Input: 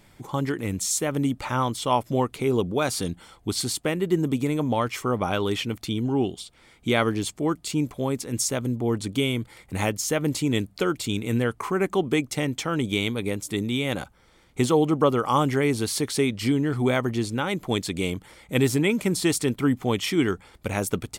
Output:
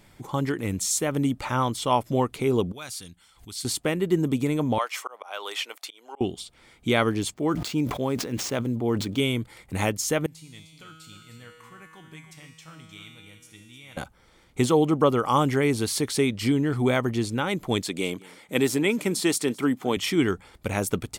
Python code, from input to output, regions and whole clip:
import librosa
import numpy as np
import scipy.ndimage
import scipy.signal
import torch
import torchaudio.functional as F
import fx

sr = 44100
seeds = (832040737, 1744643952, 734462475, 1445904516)

y = fx.chain(x, sr, fx.tone_stack(knobs='5-5-5'),
    fx.pre_swell(db_per_s=150.0), at=(2.72, 3.65))
y = fx.chain(y, sr, fx.highpass(hz=590.0, slope=24),
    fx.auto_swell(attack_ms=259.0), at=(4.78, 6.21))
y = fx.chain(y, sr, fx.median_filter(points=5),
    fx.low_shelf(hz=68.0, db=-11.5),
    fx.sustainer(db_per_s=67.0), at=(7.34, 9.2))
y = fx.chain(y, sr, fx.peak_eq(hz=390.0, db=-13.0, octaves=1.6),
    fx.comb_fb(f0_hz=160.0, decay_s=1.5, harmonics='all', damping=0.0, mix_pct=90),
    fx.echo_single(ms=306, db=-10.5), at=(10.26, 13.97))
y = fx.chain(y, sr, fx.highpass(hz=210.0, slope=12),
    fx.echo_single(ms=213, db=-23.0), at=(17.83, 19.97))